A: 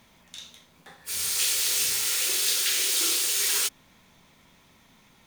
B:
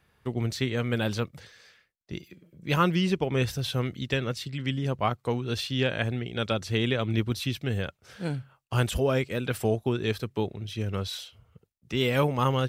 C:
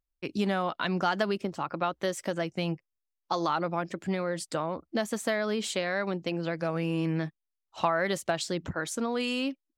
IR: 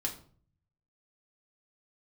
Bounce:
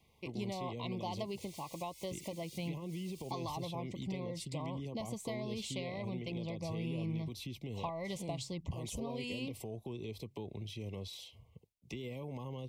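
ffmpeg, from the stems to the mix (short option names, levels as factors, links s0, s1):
-filter_complex "[0:a]asplit=2[s0][s1];[s1]adelay=2.1,afreqshift=1.2[s2];[s0][s2]amix=inputs=2:normalize=1,volume=0.158[s3];[1:a]alimiter=limit=0.0891:level=0:latency=1:release=74,dynaudnorm=f=440:g=11:m=1.58,volume=0.708[s4];[2:a]asubboost=boost=5.5:cutoff=130,volume=0.562,asplit=2[s5][s6];[s6]apad=whole_len=232288[s7];[s3][s7]sidechaincompress=threshold=0.00562:ratio=8:attack=41:release=188[s8];[s8][s4]amix=inputs=2:normalize=0,acrossover=split=200|550[s9][s10][s11];[s9]acompressor=threshold=0.0141:ratio=4[s12];[s10]acompressor=threshold=0.0224:ratio=4[s13];[s11]acompressor=threshold=0.00708:ratio=4[s14];[s12][s13][s14]amix=inputs=3:normalize=0,alimiter=level_in=1.88:limit=0.0631:level=0:latency=1:release=95,volume=0.531,volume=1[s15];[s5][s15]amix=inputs=2:normalize=0,asuperstop=centerf=1500:order=20:qfactor=1.8,acompressor=threshold=0.00447:ratio=1.5"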